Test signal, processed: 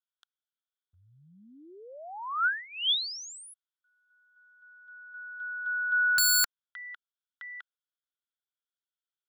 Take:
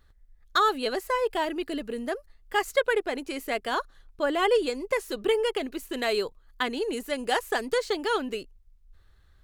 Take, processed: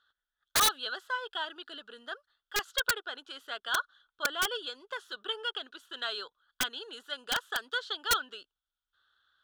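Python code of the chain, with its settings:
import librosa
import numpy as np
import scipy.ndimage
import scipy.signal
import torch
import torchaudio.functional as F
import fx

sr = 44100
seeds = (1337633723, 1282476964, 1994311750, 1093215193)

y = fx.double_bandpass(x, sr, hz=2200.0, octaves=1.2)
y = (np.mod(10.0 ** (25.0 / 20.0) * y + 1.0, 2.0) - 1.0) / 10.0 ** (25.0 / 20.0)
y = y * 10.0 ** (6.0 / 20.0)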